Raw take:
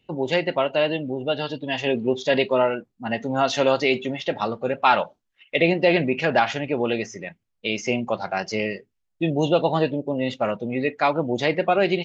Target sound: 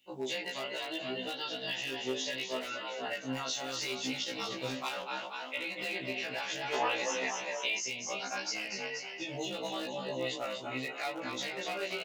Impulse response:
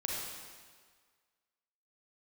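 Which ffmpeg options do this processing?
-filter_complex "[0:a]alimiter=limit=-13.5dB:level=0:latency=1:release=127,asettb=1/sr,asplit=3[link_01][link_02][link_03];[link_01]atrim=end=3.754[link_04];[link_02]atrim=start=3.75:end=4.73,asetpts=PTS-STARTPTS,afade=type=in:duration=0.004:curve=qsin,afade=type=out:start_time=0.976:duration=0.004:curve=qsin,bass=frequency=250:gain=11,treble=frequency=4000:gain=8[link_05];[link_03]atrim=start=4.726[link_06];[link_04][link_05]acrossfade=duration=0.004:curve1=hsin:curve2=qsin[link_07];[link_07][link_06]acrossfade=duration=0.004:curve1=qsin:curve2=hsin,asplit=8[link_08][link_09][link_10][link_11][link_12][link_13][link_14][link_15];[link_09]adelay=239,afreqshift=35,volume=-6.5dB[link_16];[link_10]adelay=478,afreqshift=70,volume=-12dB[link_17];[link_11]adelay=717,afreqshift=105,volume=-17.5dB[link_18];[link_12]adelay=956,afreqshift=140,volume=-23dB[link_19];[link_13]adelay=1195,afreqshift=175,volume=-28.6dB[link_20];[link_14]adelay=1434,afreqshift=210,volume=-34.1dB[link_21];[link_15]adelay=1673,afreqshift=245,volume=-39.6dB[link_22];[link_08][link_16][link_17][link_18][link_19][link_20][link_21][link_22]amix=inputs=8:normalize=0,flanger=delay=19:depth=4:speed=0.71,highpass=frequency=150:poles=1,asoftclip=type=hard:threshold=-19dB,crystalizer=i=9:c=0,acompressor=threshold=-24dB:ratio=6,asettb=1/sr,asplit=3[link_23][link_24][link_25];[link_23]atrim=end=6.734[link_26];[link_24]atrim=start=6.73:end=7.79,asetpts=PTS-STARTPTS,afade=type=in:duration=0.004:curve=qsin,afade=type=out:start_time=1.056:duration=0.004:curve=qsin,equalizer=frequency=1000:width_type=o:width=1.6:gain=14.5[link_27];[link_25]atrim=start=7.786[link_28];[link_26][link_27]acrossfade=duration=0.004:curve1=hsin:curve2=qsin[link_29];[link_29][link_28]acrossfade=duration=0.004:curve1=qsin:curve2=hsin,afftfilt=real='re*1.73*eq(mod(b,3),0)':imag='im*1.73*eq(mod(b,3),0)':win_size=2048:overlap=0.75,volume=-7dB"

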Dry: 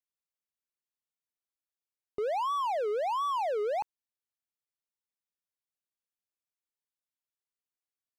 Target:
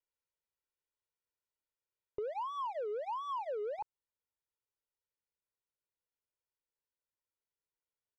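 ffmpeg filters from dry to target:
ffmpeg -i in.wav -af "asetnsamples=nb_out_samples=441:pad=0,asendcmd='3.79 lowpass f 1000',lowpass=frequency=1700:poles=1,alimiter=level_in=7.5dB:limit=-24dB:level=0:latency=1,volume=-7.5dB,aecho=1:1:2.1:0.81,acompressor=threshold=-36dB:ratio=6" out.wav

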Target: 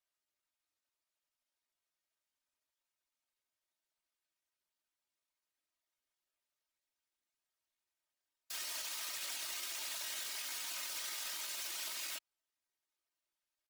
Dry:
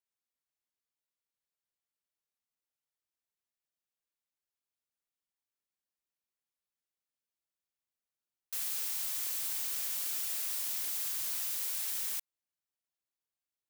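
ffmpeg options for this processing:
ffmpeg -i in.wav -filter_complex "[0:a]equalizer=frequency=120:width_type=o:width=1.6:gain=-13.5,afftfilt=real='hypot(re,im)*cos(2*PI*random(0))':imag='hypot(re,im)*sin(2*PI*random(1))':win_size=512:overlap=0.75,acrossover=split=220|5100[link_01][link_02][link_03];[link_03]alimiter=level_in=15dB:limit=-24dB:level=0:latency=1:release=144,volume=-15dB[link_04];[link_01][link_02][link_04]amix=inputs=3:normalize=0,highshelf=frequency=9100:gain=-10.5,asetrate=53981,aresample=44100,atempo=0.816958,aecho=1:1:3.2:0.48,volume=10.5dB" out.wav

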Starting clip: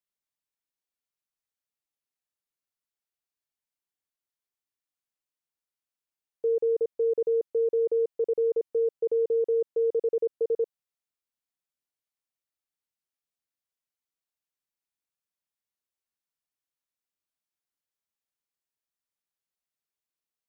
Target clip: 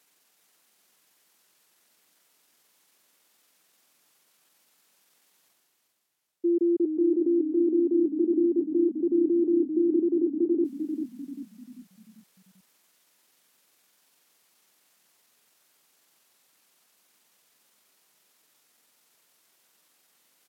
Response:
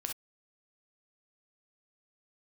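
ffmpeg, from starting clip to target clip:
-filter_complex "[0:a]highpass=frequency=230:width=0.5412,highpass=frequency=230:width=1.3066,areverse,acompressor=mode=upward:threshold=-48dB:ratio=2.5,areverse,asetrate=33038,aresample=44100,atempo=1.33484,asplit=6[link_01][link_02][link_03][link_04][link_05][link_06];[link_02]adelay=393,afreqshift=-31,volume=-7dB[link_07];[link_03]adelay=786,afreqshift=-62,volume=-14.3dB[link_08];[link_04]adelay=1179,afreqshift=-93,volume=-21.7dB[link_09];[link_05]adelay=1572,afreqshift=-124,volume=-29dB[link_10];[link_06]adelay=1965,afreqshift=-155,volume=-36.3dB[link_11];[link_01][link_07][link_08][link_09][link_10][link_11]amix=inputs=6:normalize=0,volume=1.5dB"

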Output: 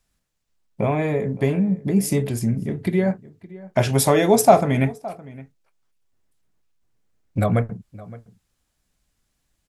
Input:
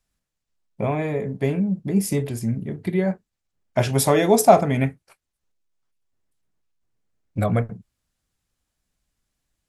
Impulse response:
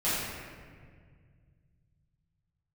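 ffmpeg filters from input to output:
-filter_complex "[0:a]asplit=2[link_01][link_02];[link_02]acompressor=threshold=-27dB:ratio=6,volume=0dB[link_03];[link_01][link_03]amix=inputs=2:normalize=0,asplit=2[link_04][link_05];[link_05]adelay=565.6,volume=-19dB,highshelf=frequency=4000:gain=-12.7[link_06];[link_04][link_06]amix=inputs=2:normalize=0,volume=-1dB"

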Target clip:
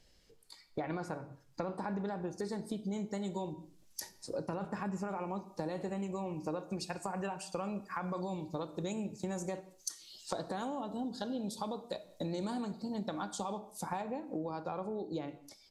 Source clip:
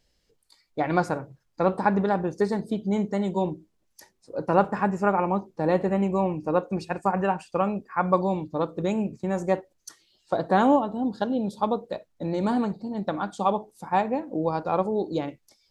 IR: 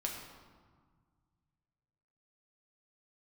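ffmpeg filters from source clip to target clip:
-filter_complex "[0:a]asettb=1/sr,asplit=3[link_01][link_02][link_03];[link_01]atrim=end=3.534[link_04];[link_02]atrim=start=3.53:end=5.08,asetpts=PTS-STARTPTS,afade=type=in:duration=0.004:curve=qsin,afade=type=out:start_time=1.546:duration=0.004:curve=qsin,bass=frequency=250:gain=4,treble=frequency=4000:gain=-5[link_05];[link_03]atrim=start=5.076[link_06];[link_04][link_05]acrossfade=duration=0.004:curve1=hsin:curve2=qsin[link_07];[link_07][link_06]acrossfade=duration=0.004:curve1=qsin:curve2=hsin,acrossover=split=520|4000[link_08][link_09][link_10];[link_10]dynaudnorm=framelen=410:gausssize=13:maxgain=14dB[link_11];[link_08][link_09][link_11]amix=inputs=3:normalize=0,alimiter=limit=-16dB:level=0:latency=1:release=19,acompressor=threshold=-39dB:ratio=8,asplit=2[link_12][link_13];[1:a]atrim=start_sample=2205,afade=type=out:start_time=0.27:duration=0.01,atrim=end_sample=12348[link_14];[link_13][link_14]afir=irnorm=-1:irlink=0,volume=-9dB[link_15];[link_12][link_15]amix=inputs=2:normalize=0,aresample=32000,aresample=44100,volume=1dB"

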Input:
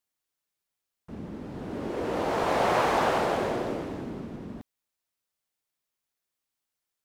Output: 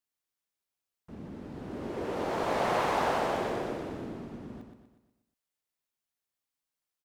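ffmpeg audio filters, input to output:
ffmpeg -i in.wav -af "aecho=1:1:121|242|363|484|605|726:0.473|0.222|0.105|0.0491|0.0231|0.0109,volume=-5dB" out.wav

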